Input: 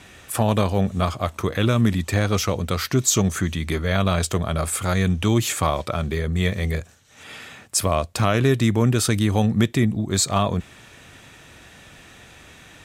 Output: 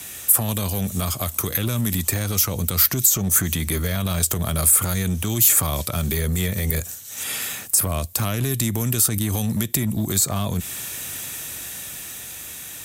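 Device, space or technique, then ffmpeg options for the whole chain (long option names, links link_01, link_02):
FM broadcast chain: -filter_complex "[0:a]highpass=40,dynaudnorm=framelen=170:gausssize=17:maxgain=11.5dB,acrossover=split=250|1900[link_01][link_02][link_03];[link_01]acompressor=threshold=-19dB:ratio=4[link_04];[link_02]acompressor=threshold=-28dB:ratio=4[link_05];[link_03]acompressor=threshold=-36dB:ratio=4[link_06];[link_04][link_05][link_06]amix=inputs=3:normalize=0,aemphasis=mode=production:type=50fm,alimiter=limit=-15.5dB:level=0:latency=1:release=58,asoftclip=type=hard:threshold=-17.5dB,lowpass=frequency=15000:width=0.5412,lowpass=frequency=15000:width=1.3066,aemphasis=mode=production:type=50fm,volume=1dB"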